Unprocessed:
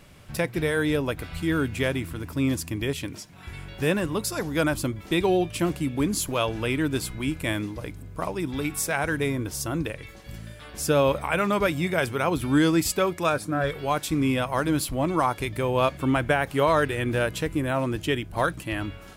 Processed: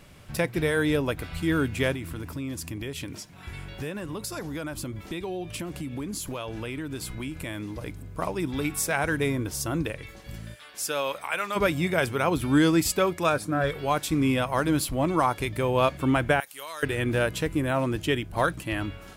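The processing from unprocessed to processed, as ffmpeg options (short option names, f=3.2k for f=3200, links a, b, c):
-filter_complex "[0:a]asettb=1/sr,asplit=3[a][b][c];[a]atrim=end=1.944[d];[b]atrim=start=1.94:end=7.86,asetpts=PTS-STARTPTS,afade=t=in:d=0.004:c=qsin,afade=t=out:st=5.916:d=0.004:c=qsin,acompressor=threshold=-30dB:ratio=6:attack=3.2:release=140:knee=1:detection=peak[e];[c]atrim=start=7.856[f];[d][e]acrossfade=d=0.004:c1=hsin:c2=qsin[g];[g][f]acrossfade=d=0.004:c1=qsin:c2=hsin,asplit=3[h][i][j];[h]afade=t=out:st=10.54:d=0.02[k];[i]highpass=f=1.4k:p=1,afade=t=in:st=10.54:d=0.02,afade=t=out:st=11.55:d=0.02[l];[j]afade=t=in:st=11.55:d=0.02[m];[k][l][m]amix=inputs=3:normalize=0,asettb=1/sr,asplit=3[n][o][p];[n]atrim=end=16.404[q];[o]atrim=start=16.4:end=16.83,asetpts=PTS-STARTPTS,afade=t=in:d=0.004:c=qsin,afade=t=out:st=0.426:d=0.004:c=qsin,aderivative[r];[p]atrim=start=16.826[s];[q][r]acrossfade=d=0.004:c1=hsin:c2=qsin[t];[t][s]acrossfade=d=0.004:c1=qsin:c2=hsin"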